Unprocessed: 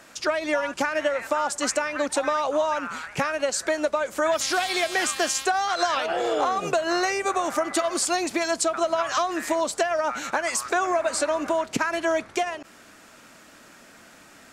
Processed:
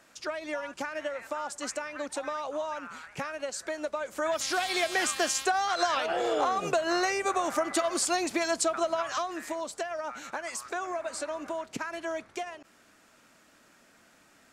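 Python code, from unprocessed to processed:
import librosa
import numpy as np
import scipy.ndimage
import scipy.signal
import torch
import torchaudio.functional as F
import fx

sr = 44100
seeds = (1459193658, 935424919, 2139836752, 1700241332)

y = fx.gain(x, sr, db=fx.line((3.72, -10.0), (4.8, -3.5), (8.71, -3.5), (9.57, -10.5)))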